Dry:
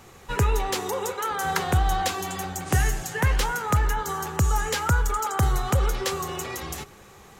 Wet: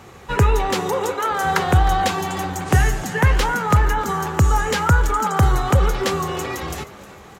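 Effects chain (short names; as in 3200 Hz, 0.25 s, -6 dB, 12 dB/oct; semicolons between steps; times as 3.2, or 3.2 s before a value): HPF 40 Hz; high shelf 4700 Hz -8.5 dB; frequency-shifting echo 0.31 s, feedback 44%, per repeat +120 Hz, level -18 dB; gain +7 dB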